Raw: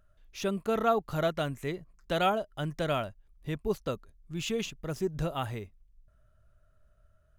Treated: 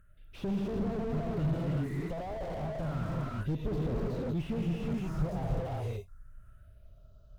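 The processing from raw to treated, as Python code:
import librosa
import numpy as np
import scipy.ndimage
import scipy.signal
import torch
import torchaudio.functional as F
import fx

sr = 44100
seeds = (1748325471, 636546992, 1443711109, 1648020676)

y = fx.phaser_stages(x, sr, stages=4, low_hz=260.0, high_hz=2000.0, hz=0.32, feedback_pct=25)
y = fx.cheby_harmonics(y, sr, harmonics=(5,), levels_db=(-11,), full_scale_db=-18.0)
y = fx.rev_gated(y, sr, seeds[0], gate_ms=400, shape='rising', drr_db=-3.0)
y = fx.slew_limit(y, sr, full_power_hz=12.0)
y = F.gain(torch.from_numpy(y), -3.0).numpy()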